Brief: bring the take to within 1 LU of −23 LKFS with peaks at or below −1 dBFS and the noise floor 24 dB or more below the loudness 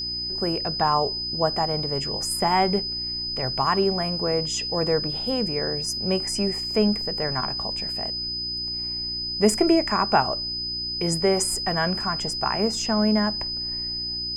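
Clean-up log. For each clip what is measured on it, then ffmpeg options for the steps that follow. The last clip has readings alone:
mains hum 60 Hz; hum harmonics up to 360 Hz; level of the hum −39 dBFS; interfering tone 5,000 Hz; level of the tone −27 dBFS; integrated loudness −23.5 LKFS; sample peak −6.0 dBFS; target loudness −23.0 LKFS
→ -af "bandreject=frequency=60:width_type=h:width=4,bandreject=frequency=120:width_type=h:width=4,bandreject=frequency=180:width_type=h:width=4,bandreject=frequency=240:width_type=h:width=4,bandreject=frequency=300:width_type=h:width=4,bandreject=frequency=360:width_type=h:width=4"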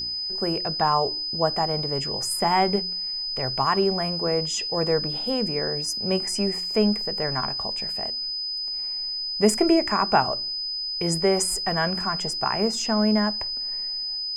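mains hum none found; interfering tone 5,000 Hz; level of the tone −27 dBFS
→ -af "bandreject=frequency=5000:width=30"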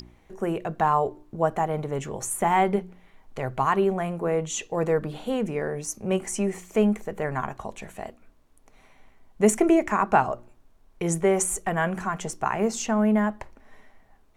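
interfering tone none found; integrated loudness −25.5 LKFS; sample peak −6.5 dBFS; target loudness −23.0 LKFS
→ -af "volume=2.5dB"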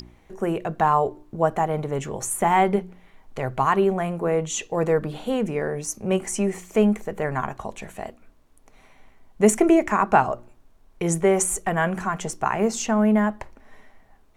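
integrated loudness −23.0 LKFS; sample peak −4.0 dBFS; background noise floor −55 dBFS

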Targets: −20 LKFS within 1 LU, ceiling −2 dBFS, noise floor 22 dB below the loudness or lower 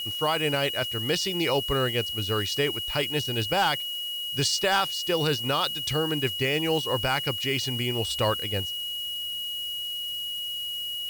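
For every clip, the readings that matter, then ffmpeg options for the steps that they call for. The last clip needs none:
interfering tone 2,900 Hz; level of the tone −30 dBFS; background noise floor −33 dBFS; target noise floor −48 dBFS; integrated loudness −26.0 LKFS; sample peak −13.0 dBFS; target loudness −20.0 LKFS
→ -af "bandreject=frequency=2900:width=30"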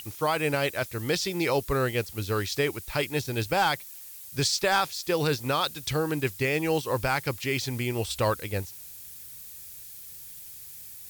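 interfering tone none found; background noise floor −44 dBFS; target noise floor −50 dBFS
→ -af "afftdn=noise_reduction=6:noise_floor=-44"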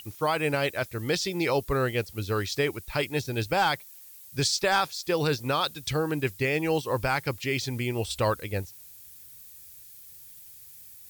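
background noise floor −49 dBFS; target noise floor −50 dBFS
→ -af "afftdn=noise_reduction=6:noise_floor=-49"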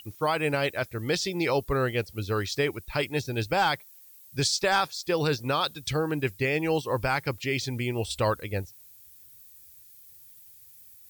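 background noise floor −52 dBFS; integrated loudness −28.0 LKFS; sample peak −14.5 dBFS; target loudness −20.0 LKFS
→ -af "volume=8dB"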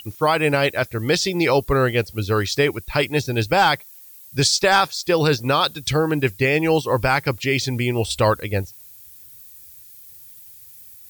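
integrated loudness −20.0 LKFS; sample peak −6.5 dBFS; background noise floor −44 dBFS

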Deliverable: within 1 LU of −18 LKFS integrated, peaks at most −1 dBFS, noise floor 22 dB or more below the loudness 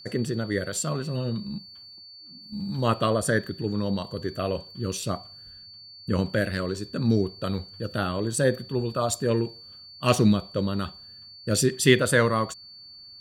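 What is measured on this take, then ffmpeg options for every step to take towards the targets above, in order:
interfering tone 4,500 Hz; level of the tone −44 dBFS; integrated loudness −26.0 LKFS; sample peak −4.5 dBFS; target loudness −18.0 LKFS
→ -af "bandreject=frequency=4500:width=30"
-af "volume=8dB,alimiter=limit=-1dB:level=0:latency=1"

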